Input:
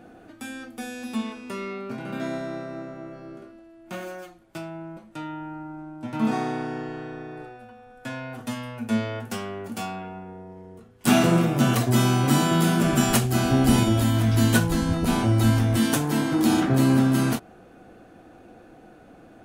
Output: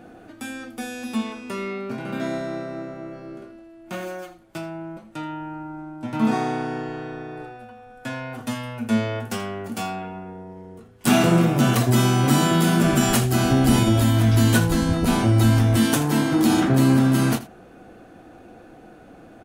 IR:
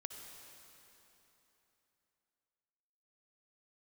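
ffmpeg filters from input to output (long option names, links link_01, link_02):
-filter_complex "[0:a]asplit=2[link_01][link_02];[link_02]alimiter=limit=-12.5dB:level=0:latency=1,volume=2dB[link_03];[link_01][link_03]amix=inputs=2:normalize=0,aecho=1:1:82:0.15,volume=-4dB"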